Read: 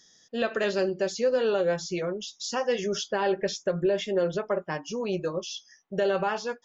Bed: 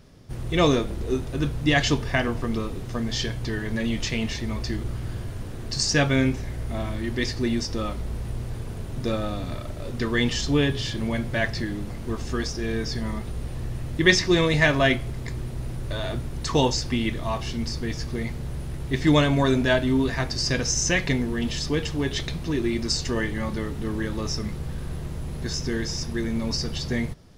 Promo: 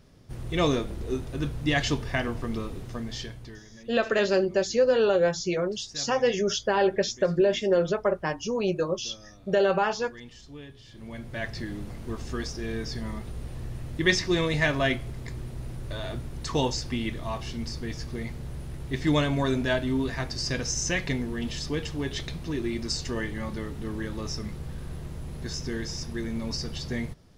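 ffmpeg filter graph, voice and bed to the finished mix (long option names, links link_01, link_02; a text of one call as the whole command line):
ffmpeg -i stem1.wav -i stem2.wav -filter_complex "[0:a]adelay=3550,volume=3dB[link_01];[1:a]volume=13dB,afade=type=out:start_time=2.78:duration=0.9:silence=0.125893,afade=type=in:start_time=10.86:duration=0.9:silence=0.133352[link_02];[link_01][link_02]amix=inputs=2:normalize=0" out.wav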